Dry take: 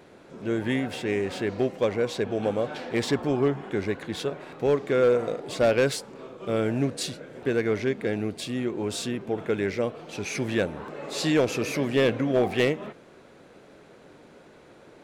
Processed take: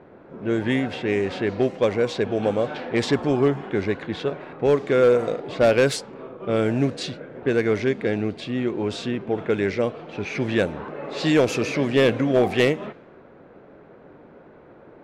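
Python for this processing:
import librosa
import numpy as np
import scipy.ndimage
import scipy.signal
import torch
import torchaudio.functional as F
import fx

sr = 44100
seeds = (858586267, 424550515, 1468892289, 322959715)

y = fx.env_lowpass(x, sr, base_hz=1400.0, full_db=-19.0)
y = y * librosa.db_to_amplitude(4.0)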